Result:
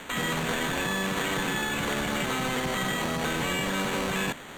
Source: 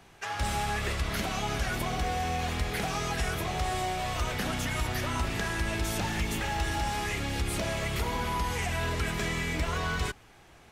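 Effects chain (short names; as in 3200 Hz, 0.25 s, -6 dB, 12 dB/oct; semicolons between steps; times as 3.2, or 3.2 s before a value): per-bin compression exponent 0.6; HPF 69 Hz 24 dB/oct; spectral gate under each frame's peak -20 dB strong; sample-rate reducer 2200 Hz, jitter 0%; LPF 5000 Hz 12 dB/oct; speed mistake 33 rpm record played at 78 rpm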